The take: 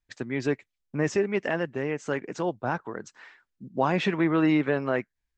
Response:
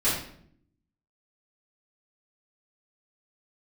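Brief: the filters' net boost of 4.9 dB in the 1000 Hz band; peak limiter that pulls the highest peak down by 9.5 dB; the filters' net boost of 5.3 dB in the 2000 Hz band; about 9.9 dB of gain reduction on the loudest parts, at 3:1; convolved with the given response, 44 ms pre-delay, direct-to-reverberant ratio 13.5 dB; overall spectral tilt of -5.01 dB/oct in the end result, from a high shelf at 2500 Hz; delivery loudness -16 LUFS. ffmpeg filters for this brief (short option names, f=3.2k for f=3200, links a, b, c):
-filter_complex "[0:a]equalizer=f=1k:t=o:g=5.5,equalizer=f=2k:t=o:g=7.5,highshelf=f=2.5k:g=-6.5,acompressor=threshold=-29dB:ratio=3,alimiter=level_in=0.5dB:limit=-24dB:level=0:latency=1,volume=-0.5dB,asplit=2[a][b];[1:a]atrim=start_sample=2205,adelay=44[c];[b][c]afir=irnorm=-1:irlink=0,volume=-25.5dB[d];[a][d]amix=inputs=2:normalize=0,volume=20.5dB"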